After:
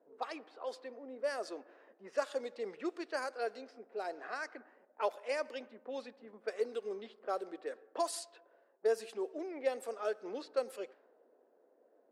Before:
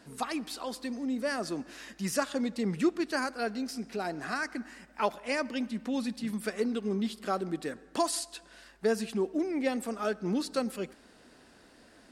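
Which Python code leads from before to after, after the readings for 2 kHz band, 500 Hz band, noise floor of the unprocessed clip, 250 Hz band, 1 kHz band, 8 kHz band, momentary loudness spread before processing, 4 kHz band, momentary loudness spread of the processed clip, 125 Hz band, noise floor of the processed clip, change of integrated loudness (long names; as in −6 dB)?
−8.0 dB, −3.0 dB, −58 dBFS, −16.5 dB, −6.0 dB, −10.5 dB, 7 LU, −10.0 dB, 9 LU, below −25 dB, −70 dBFS, −7.0 dB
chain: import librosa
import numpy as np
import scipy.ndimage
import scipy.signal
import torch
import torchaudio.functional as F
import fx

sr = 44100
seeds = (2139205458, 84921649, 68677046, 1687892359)

y = fx.ladder_highpass(x, sr, hz=410.0, resonance_pct=50)
y = fx.env_lowpass(y, sr, base_hz=530.0, full_db=-35.0)
y = F.gain(torch.from_numpy(y), 1.0).numpy()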